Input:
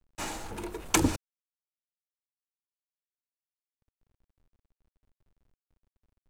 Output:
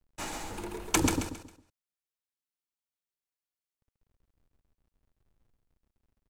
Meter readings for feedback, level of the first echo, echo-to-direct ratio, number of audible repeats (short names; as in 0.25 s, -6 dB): 32%, -4.5 dB, -4.0 dB, 4